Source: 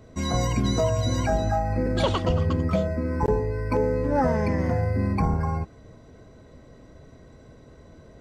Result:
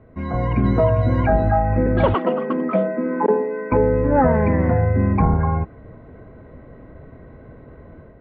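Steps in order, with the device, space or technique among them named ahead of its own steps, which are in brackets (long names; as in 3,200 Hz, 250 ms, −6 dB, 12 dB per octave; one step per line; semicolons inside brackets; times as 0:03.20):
0:02.14–0:03.72: Butterworth high-pass 190 Hz 72 dB per octave
action camera in a waterproof case (low-pass filter 2,200 Hz 24 dB per octave; automatic gain control gain up to 7 dB; AAC 96 kbit/s 48,000 Hz)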